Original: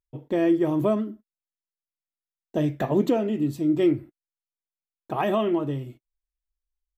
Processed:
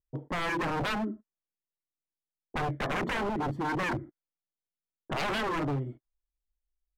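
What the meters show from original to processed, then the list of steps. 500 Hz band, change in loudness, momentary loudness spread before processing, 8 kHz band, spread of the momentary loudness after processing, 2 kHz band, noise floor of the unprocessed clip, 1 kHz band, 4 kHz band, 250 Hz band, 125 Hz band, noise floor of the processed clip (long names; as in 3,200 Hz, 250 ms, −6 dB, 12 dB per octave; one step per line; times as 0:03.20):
−10.5 dB, −7.5 dB, 11 LU, can't be measured, 8 LU, +7.0 dB, below −85 dBFS, +0.5 dB, +4.0 dB, −11.5 dB, −4.5 dB, below −85 dBFS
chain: Savitzky-Golay smoothing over 41 samples
wave folding −26.5 dBFS
low-pass that shuts in the quiet parts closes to 480 Hz, open at −32 dBFS
level +1 dB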